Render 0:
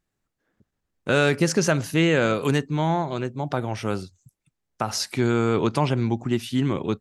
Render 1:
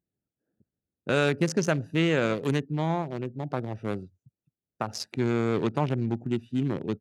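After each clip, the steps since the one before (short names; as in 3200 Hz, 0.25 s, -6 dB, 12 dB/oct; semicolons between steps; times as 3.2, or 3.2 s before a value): Wiener smoothing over 41 samples; HPF 89 Hz; gain -3.5 dB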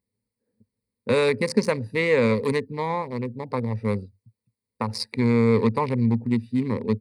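ripple EQ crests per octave 0.93, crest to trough 16 dB; gain +1.5 dB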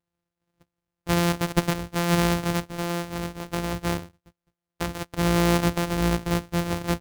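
sample sorter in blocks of 256 samples; gain -2 dB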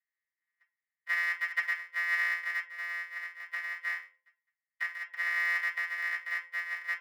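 ladder high-pass 1800 Hz, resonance 85%; reverb RT60 0.35 s, pre-delay 3 ms, DRR -2 dB; gain -7 dB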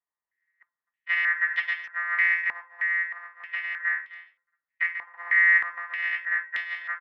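speakerphone echo 0.26 s, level -13 dB; stepped low-pass 3.2 Hz 980–3300 Hz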